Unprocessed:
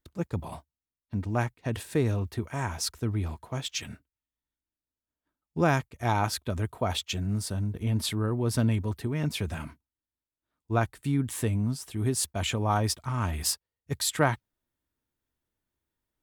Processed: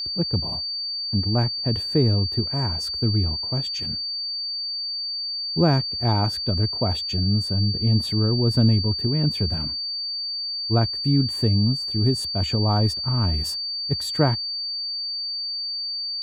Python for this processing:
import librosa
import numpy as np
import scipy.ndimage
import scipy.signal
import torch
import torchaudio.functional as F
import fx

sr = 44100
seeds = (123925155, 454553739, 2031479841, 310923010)

y = fx.tilt_shelf(x, sr, db=8.0, hz=900.0)
y = y + 10.0 ** (-26.0 / 20.0) * np.sin(2.0 * np.pi * 4600.0 * np.arange(len(y)) / sr)